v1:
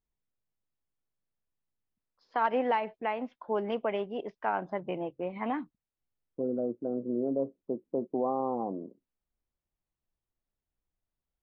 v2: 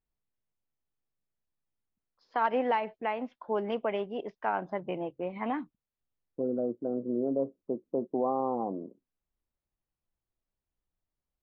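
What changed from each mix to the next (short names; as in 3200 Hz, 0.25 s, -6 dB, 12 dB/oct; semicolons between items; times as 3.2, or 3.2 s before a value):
first voice: add air absorption 280 m; master: remove air absorption 290 m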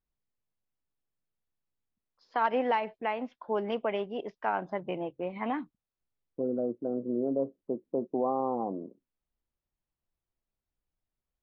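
first voice: add high shelf 4100 Hz +5.5 dB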